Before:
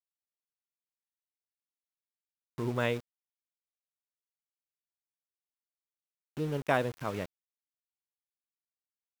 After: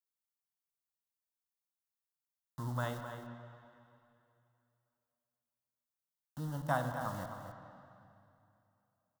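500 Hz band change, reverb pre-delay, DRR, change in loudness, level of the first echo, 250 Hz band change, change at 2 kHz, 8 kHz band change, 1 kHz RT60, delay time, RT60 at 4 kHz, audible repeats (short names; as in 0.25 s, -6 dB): -8.5 dB, 5 ms, 4.0 dB, -6.5 dB, -10.0 dB, -6.0 dB, -6.5 dB, -1.0 dB, 2.7 s, 0.26 s, 2.5 s, 1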